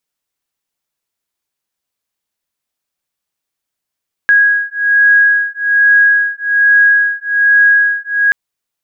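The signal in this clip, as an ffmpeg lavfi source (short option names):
-f lavfi -i "aevalsrc='0.299*(sin(2*PI*1650*t)+sin(2*PI*1651.2*t))':d=4.03:s=44100"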